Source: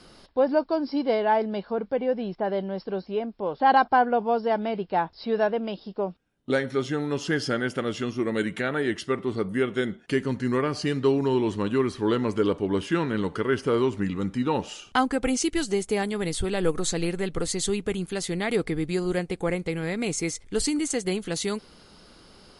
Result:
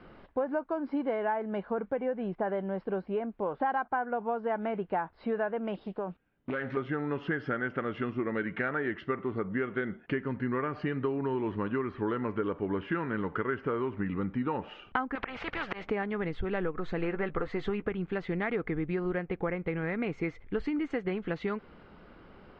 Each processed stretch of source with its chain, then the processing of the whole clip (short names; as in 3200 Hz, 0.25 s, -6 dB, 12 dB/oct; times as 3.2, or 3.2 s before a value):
5.74–6.77 high shelf 3100 Hz +10 dB + compressor 5:1, threshold -30 dBFS + Doppler distortion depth 0.31 ms
15.15–15.9 LPF 6100 Hz 24 dB/oct + auto swell 0.271 s + spectral compressor 4:1
16.97–17.89 bell 990 Hz +5.5 dB 2.5 oct + doubler 14 ms -11 dB
whole clip: LPF 2400 Hz 24 dB/oct; dynamic EQ 1400 Hz, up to +6 dB, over -41 dBFS, Q 1.2; compressor 6:1, threshold -28 dBFS